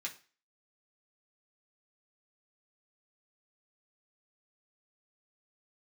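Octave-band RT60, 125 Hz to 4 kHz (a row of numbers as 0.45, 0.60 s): 0.35, 0.35, 0.35, 0.35, 0.40, 0.35 s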